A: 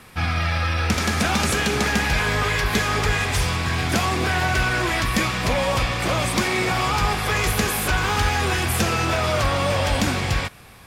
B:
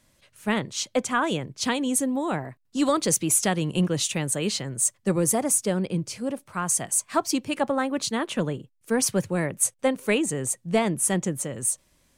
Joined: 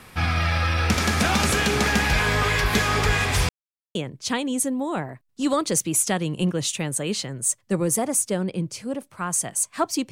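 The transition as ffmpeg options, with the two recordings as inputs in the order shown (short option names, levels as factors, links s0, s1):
-filter_complex "[0:a]apad=whole_dur=10.11,atrim=end=10.11,asplit=2[s0][s1];[s0]atrim=end=3.49,asetpts=PTS-STARTPTS,afade=t=out:st=3.486:d=0.004:c=hsin[s2];[s1]atrim=start=3.49:end=3.95,asetpts=PTS-STARTPTS,volume=0[s3];[1:a]atrim=start=1.31:end=7.47,asetpts=PTS-STARTPTS,afade=t=in:d=0.004:c=hsin[s4];[s2][s3][s4]concat=n=3:v=0:a=1"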